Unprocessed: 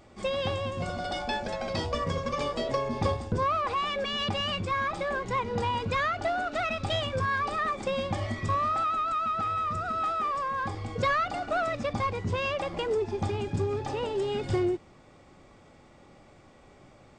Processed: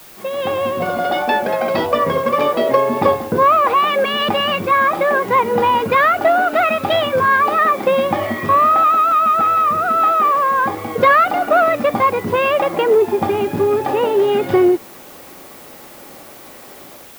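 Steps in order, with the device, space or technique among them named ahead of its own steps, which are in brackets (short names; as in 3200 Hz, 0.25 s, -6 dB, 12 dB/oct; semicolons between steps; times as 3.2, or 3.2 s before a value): dictaphone (BPF 260–3000 Hz; AGC gain up to 11.5 dB; wow and flutter 24 cents; white noise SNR 23 dB); bell 6900 Hz -6 dB 2.3 oct; gain +4.5 dB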